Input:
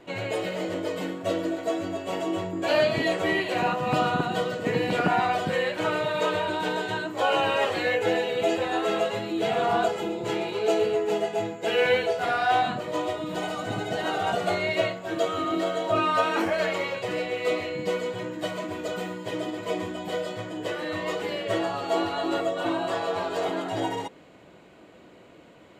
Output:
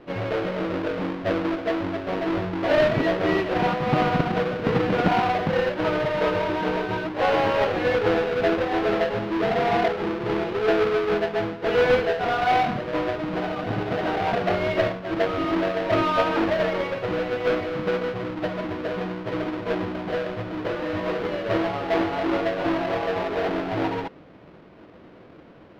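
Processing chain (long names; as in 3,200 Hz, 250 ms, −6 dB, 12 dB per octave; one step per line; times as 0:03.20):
each half-wave held at its own peak
high-frequency loss of the air 320 metres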